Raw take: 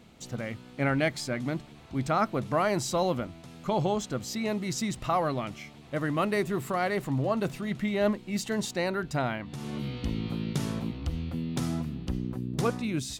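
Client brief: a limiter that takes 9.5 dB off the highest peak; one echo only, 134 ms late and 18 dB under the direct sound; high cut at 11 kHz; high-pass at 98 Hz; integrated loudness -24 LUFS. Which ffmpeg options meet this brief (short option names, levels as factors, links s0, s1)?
-af "highpass=98,lowpass=11000,alimiter=limit=0.0668:level=0:latency=1,aecho=1:1:134:0.126,volume=3.16"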